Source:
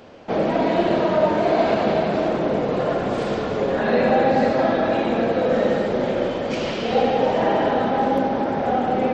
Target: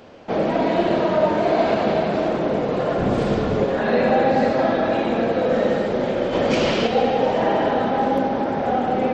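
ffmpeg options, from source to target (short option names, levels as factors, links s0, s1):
-filter_complex "[0:a]asettb=1/sr,asplit=3[s0][s1][s2];[s0]atrim=end=2.984[s3];[s1]atrim=start=2.98:end=3.65,asetpts=PTS-STARTPTS,afade=t=in:d=0.004:c=qsin,afade=t=out:st=0.666:d=0.004:c=qsin,lowshelf=f=240:g=10[s4];[s2]atrim=start=3.646[s5];[s3][s4]acrossfade=d=0.004:c1=hsin:c2=qsin[s6];[s6][s5]acrossfade=d=0.004:c1=qsin:c2=hsin,asplit=3[s7][s8][s9];[s7]afade=t=out:st=6.32:d=0.02[s10];[s8]acontrast=45,afade=t=in:st=6.32:d=0.02,afade=t=out:st=6.86:d=0.02[s11];[s9]afade=t=in:st=6.86:d=0.02[s12];[s10][s11][s12]amix=inputs=3:normalize=0"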